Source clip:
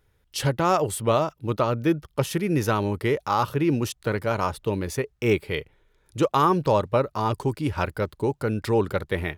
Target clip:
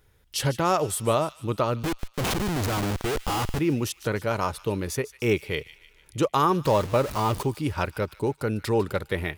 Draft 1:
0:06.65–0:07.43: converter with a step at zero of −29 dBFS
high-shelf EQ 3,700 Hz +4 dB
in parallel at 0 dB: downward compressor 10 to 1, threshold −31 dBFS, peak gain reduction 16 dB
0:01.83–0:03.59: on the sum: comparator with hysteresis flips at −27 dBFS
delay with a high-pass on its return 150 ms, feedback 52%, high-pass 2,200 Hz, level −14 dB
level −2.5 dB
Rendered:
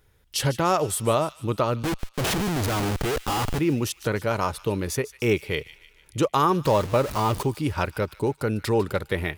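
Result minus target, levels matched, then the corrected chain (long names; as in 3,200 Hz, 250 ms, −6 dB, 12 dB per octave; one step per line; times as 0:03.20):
downward compressor: peak gain reduction −9 dB
0:06.65–0:07.43: converter with a step at zero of −29 dBFS
high-shelf EQ 3,700 Hz +4 dB
in parallel at 0 dB: downward compressor 10 to 1, threshold −41 dBFS, peak gain reduction 25 dB
0:01.83–0:03.59: on the sum: comparator with hysteresis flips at −27 dBFS
delay with a high-pass on its return 150 ms, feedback 52%, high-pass 2,200 Hz, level −14 dB
level −2.5 dB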